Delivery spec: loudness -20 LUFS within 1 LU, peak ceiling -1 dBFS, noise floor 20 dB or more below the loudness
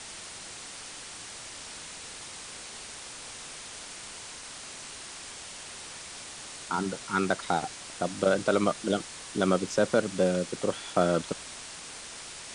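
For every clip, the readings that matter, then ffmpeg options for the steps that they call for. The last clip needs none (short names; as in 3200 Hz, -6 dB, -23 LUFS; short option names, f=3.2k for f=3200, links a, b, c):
noise floor -43 dBFS; noise floor target -52 dBFS; loudness -32.0 LUFS; peak -10.5 dBFS; loudness target -20.0 LUFS
-> -af "afftdn=nr=9:nf=-43"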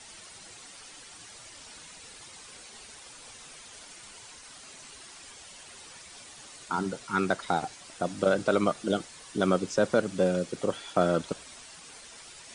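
noise floor -49 dBFS; loudness -29.0 LUFS; peak -10.5 dBFS; loudness target -20.0 LUFS
-> -af "volume=9dB"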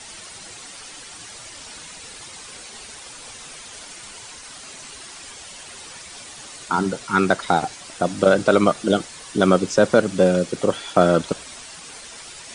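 loudness -20.0 LUFS; peak -1.5 dBFS; noise floor -40 dBFS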